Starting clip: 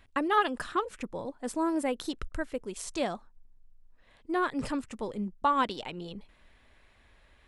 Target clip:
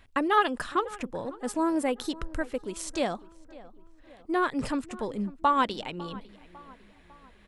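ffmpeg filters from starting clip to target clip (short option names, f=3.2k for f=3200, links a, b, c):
-filter_complex "[0:a]asplit=2[a][b];[b]adelay=551,lowpass=f=2.3k:p=1,volume=-19.5dB,asplit=2[c][d];[d]adelay=551,lowpass=f=2.3k:p=1,volume=0.54,asplit=2[e][f];[f]adelay=551,lowpass=f=2.3k:p=1,volume=0.54,asplit=2[g][h];[h]adelay=551,lowpass=f=2.3k:p=1,volume=0.54[i];[a][c][e][g][i]amix=inputs=5:normalize=0,volume=2.5dB"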